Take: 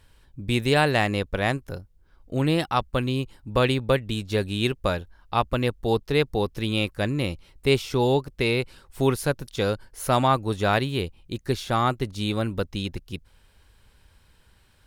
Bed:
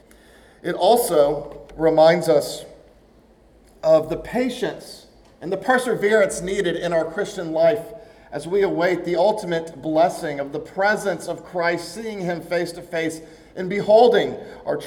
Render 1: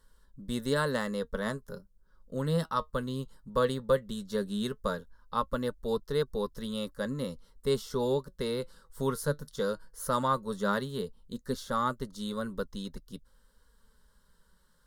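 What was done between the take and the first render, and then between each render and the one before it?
fixed phaser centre 490 Hz, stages 8; flange 0.16 Hz, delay 2.6 ms, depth 4.2 ms, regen +70%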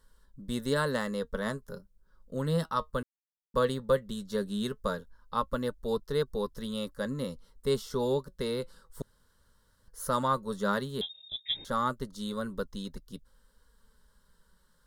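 3.03–3.54 mute; 9.02–9.88 room tone; 11.01–11.65 inverted band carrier 3700 Hz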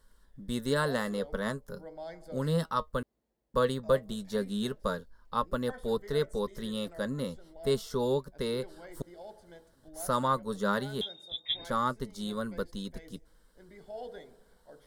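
add bed -29.5 dB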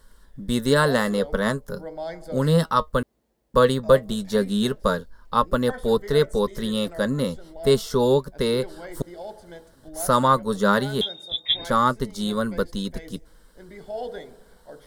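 gain +10 dB

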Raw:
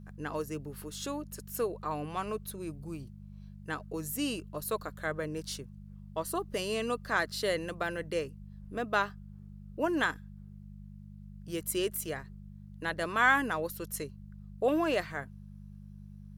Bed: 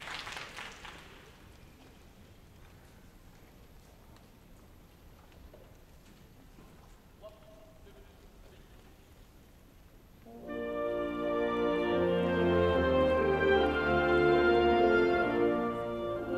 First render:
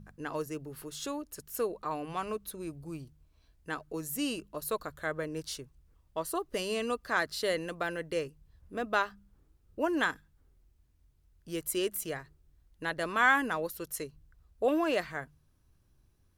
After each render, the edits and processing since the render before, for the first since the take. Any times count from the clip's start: de-hum 50 Hz, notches 4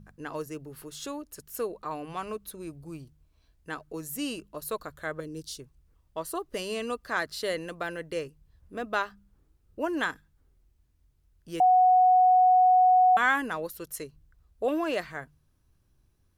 5.2–5.6 band shelf 1200 Hz -12 dB 2.5 oct; 11.6–13.17 bleep 737 Hz -16 dBFS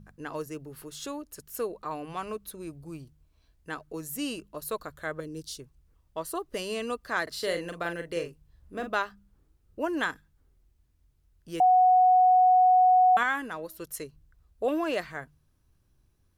7.23–8.91 doubler 41 ms -7 dB; 13.23–13.79 resonator 320 Hz, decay 0.5 s, mix 40%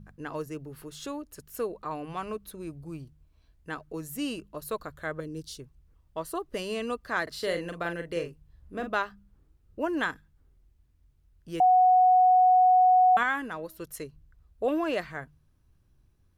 tone controls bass +3 dB, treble -4 dB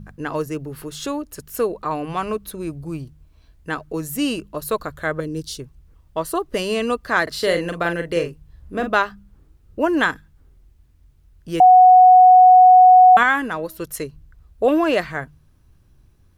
gain +10.5 dB

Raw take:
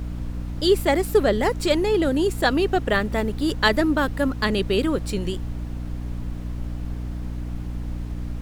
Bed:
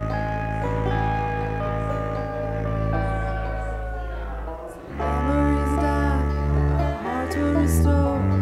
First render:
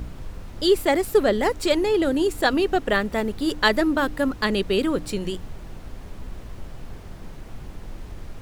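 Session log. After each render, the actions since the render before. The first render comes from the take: de-hum 60 Hz, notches 5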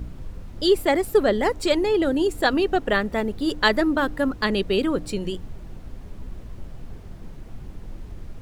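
denoiser 6 dB, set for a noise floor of -40 dBFS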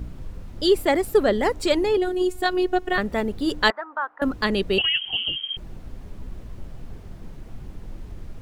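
1.97–2.98 robotiser 365 Hz; 3.7–4.22 Butterworth band-pass 1100 Hz, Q 1.5; 4.78–5.57 inverted band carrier 3200 Hz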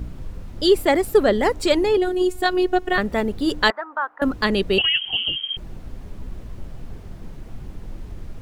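gain +2.5 dB; limiter -3 dBFS, peak gain reduction 2 dB

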